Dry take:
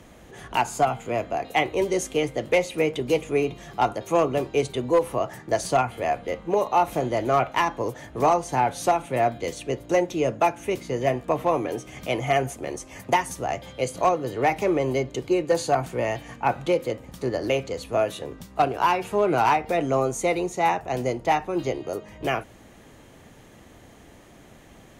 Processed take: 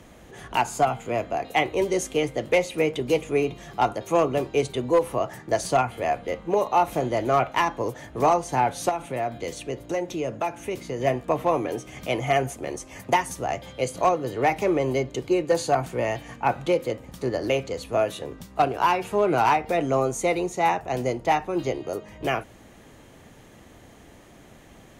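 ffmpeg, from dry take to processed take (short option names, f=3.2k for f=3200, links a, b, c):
-filter_complex "[0:a]asettb=1/sr,asplit=3[a][b][c];[a]atrim=end=8.894[d];[b]atrim=start=8.89:end=11,asetpts=PTS-STARTPTS,afade=t=in:d=0.004:c=qsin,afade=t=out:st=2.106:d=0.004:c=qsin,acompressor=threshold=-27dB:ratio=2:attack=3.2:release=140:knee=1:detection=peak[e];[c]atrim=start=10.996[f];[d][e]acrossfade=d=0.004:c1=hsin:c2=qsin[g];[g][f]acrossfade=d=0.004:c1=qsin:c2=hsin"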